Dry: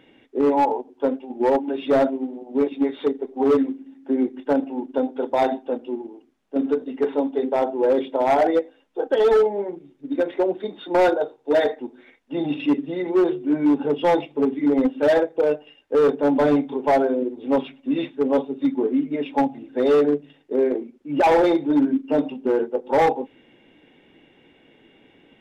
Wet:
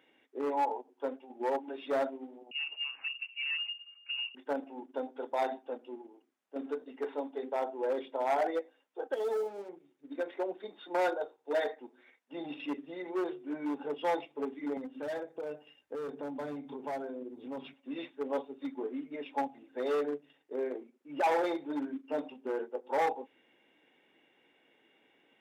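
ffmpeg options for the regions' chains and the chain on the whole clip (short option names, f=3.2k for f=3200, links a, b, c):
-filter_complex "[0:a]asettb=1/sr,asplit=3[a][b][c];[a]atrim=end=2.514[d];[b]atrim=start=2.51:end=4.35,asetpts=PTS-STARTPTS,afade=t=in:d=0.004:c=qsin,afade=t=out:st=1.836:d=0.004:c=qsin,acompressor=threshold=-22dB:ratio=6:attack=3.2:release=140:knee=1:detection=peak,lowpass=f=2.6k:t=q:w=0.5098,lowpass=f=2.6k:t=q:w=0.6013,lowpass=f=2.6k:t=q:w=0.9,lowpass=f=2.6k:t=q:w=2.563,afreqshift=-3100[e];[c]atrim=start=4.346[f];[d][e]acrossfade=d=0.004:c1=hsin:c2=qsin[g];[g][f]acrossfade=d=0.004:c1=qsin:c2=hsin,asettb=1/sr,asplit=3[h][i][j];[h]atrim=end=9.144[k];[i]atrim=start=9.14:end=9.69,asetpts=PTS-STARTPTS,afade=t=in:d=0.004:c=qsin,afade=t=out:st=0.546:d=0.004:c=qsin,equalizer=f=2k:t=o:w=2.1:g=-11,aeval=exprs='sgn(val(0))*max(abs(val(0))-0.00631,0)':c=same[l];[j]atrim=start=9.686[m];[k][l]acrossfade=d=0.004:c1=hsin:c2=qsin[n];[n][m]acrossfade=d=0.004:c1=qsin:c2=hsin,asettb=1/sr,asplit=3[o][p][q];[o]atrim=end=14.774[r];[p]atrim=start=14.77:end=17.74,asetpts=PTS-STARTPTS,afade=t=in:d=0.004:c=qsin,afade=t=out:st=2.966:d=0.004:c=qsin,bass=f=250:g=15,treble=f=4k:g=3,acompressor=threshold=-22dB:ratio=4:attack=3.2:release=140:knee=1:detection=peak[s];[q]atrim=start=17.736[t];[r][s]acrossfade=d=0.004:c1=hsin:c2=qsin[u];[u][t]acrossfade=d=0.004:c1=qsin:c2=hsin,highpass=f=1.1k:p=1,equalizer=f=3.7k:w=0.72:g=-5.5,volume=-5.5dB"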